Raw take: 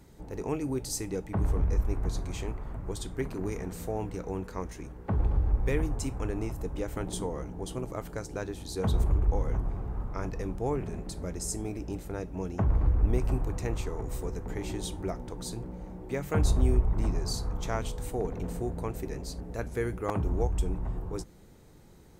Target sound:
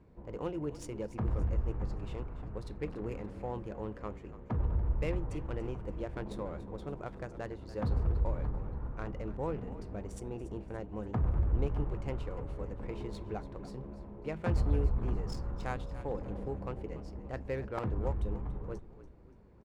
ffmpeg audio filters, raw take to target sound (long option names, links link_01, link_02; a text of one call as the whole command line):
ffmpeg -i in.wav -filter_complex "[0:a]adynamicsmooth=sensitivity=5:basefreq=1800,asplit=5[link_01][link_02][link_03][link_04][link_05];[link_02]adelay=324,afreqshift=-32,volume=-14.5dB[link_06];[link_03]adelay=648,afreqshift=-64,volume=-21.6dB[link_07];[link_04]adelay=972,afreqshift=-96,volume=-28.8dB[link_08];[link_05]adelay=1296,afreqshift=-128,volume=-35.9dB[link_09];[link_01][link_06][link_07][link_08][link_09]amix=inputs=5:normalize=0,asetrate=49833,aresample=44100,volume=-5dB" out.wav